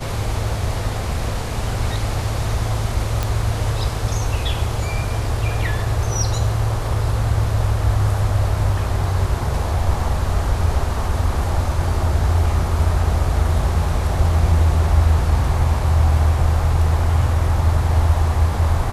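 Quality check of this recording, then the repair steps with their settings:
0:03.23: click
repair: click removal

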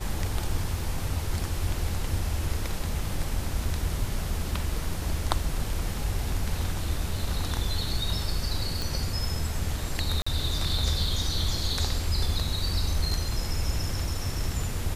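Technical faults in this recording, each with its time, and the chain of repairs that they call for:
0:08.82: click
0:10.22–0:10.27: drop-out 45 ms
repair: click removal
repair the gap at 0:10.22, 45 ms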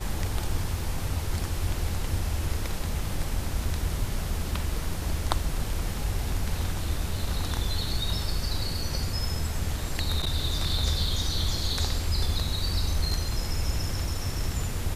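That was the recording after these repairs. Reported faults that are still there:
none of them is left

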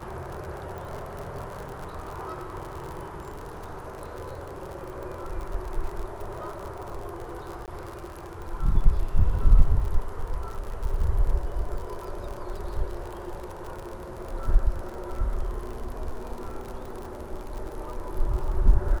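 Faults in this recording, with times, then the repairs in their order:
surface crackle 56 per second −33 dBFS
0:00.78: click
0:07.66–0:07.68: drop-out 18 ms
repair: click removal
repair the gap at 0:07.66, 18 ms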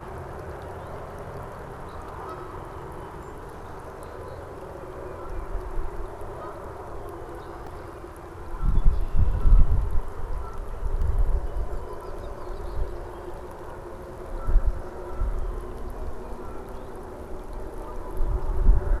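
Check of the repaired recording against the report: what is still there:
0:00.78: click

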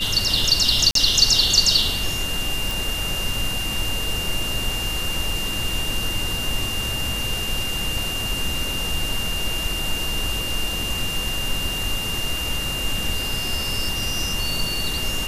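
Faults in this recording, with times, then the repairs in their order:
whistle 2,800 Hz −26 dBFS
0:00.91–0:00.95: drop-out 43 ms
0:02.71: click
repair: click removal
notch filter 2,800 Hz, Q 30
repair the gap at 0:00.91, 43 ms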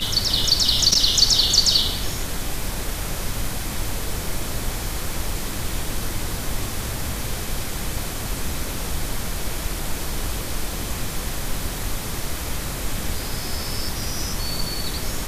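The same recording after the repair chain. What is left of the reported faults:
none of them is left

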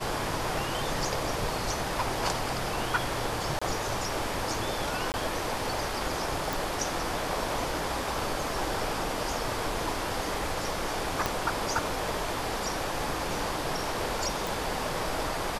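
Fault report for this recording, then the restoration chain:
0:03.59–0:03.62: drop-out 25 ms
0:05.12–0:05.14: drop-out 19 ms
0:06.53: click
0:11.26: click −11 dBFS
0:14.47: click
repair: click removal
repair the gap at 0:03.59, 25 ms
repair the gap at 0:05.12, 19 ms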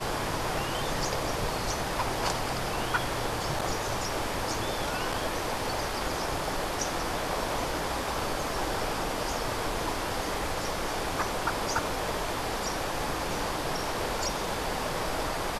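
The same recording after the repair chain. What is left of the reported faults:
0:11.26: click

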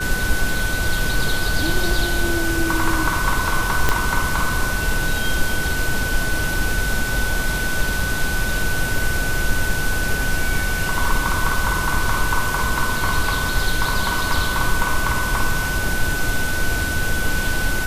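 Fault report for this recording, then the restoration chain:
whistle 1,500 Hz −24 dBFS
0:03.89: click −2 dBFS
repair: click removal
notch filter 1,500 Hz, Q 30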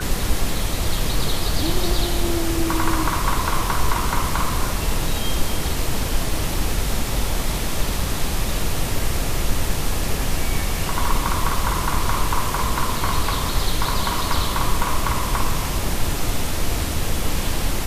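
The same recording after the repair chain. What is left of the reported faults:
0:03.89: click

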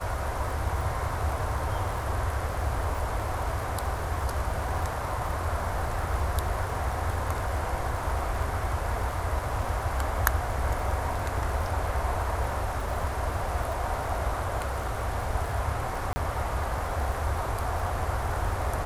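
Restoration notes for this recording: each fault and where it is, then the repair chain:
surface crackle 34 per second −33 dBFS
0:16.13–0:16.16: drop-out 30 ms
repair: click removal
repair the gap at 0:16.13, 30 ms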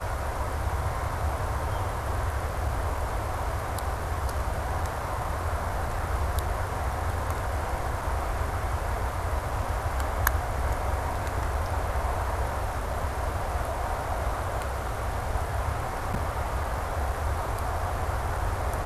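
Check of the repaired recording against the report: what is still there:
none of them is left

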